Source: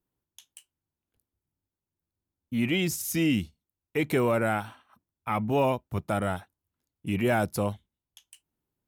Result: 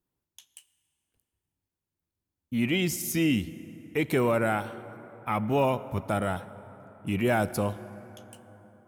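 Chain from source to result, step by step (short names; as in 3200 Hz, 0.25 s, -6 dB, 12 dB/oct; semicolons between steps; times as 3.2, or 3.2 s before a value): plate-style reverb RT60 4.2 s, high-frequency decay 0.45×, DRR 14.5 dB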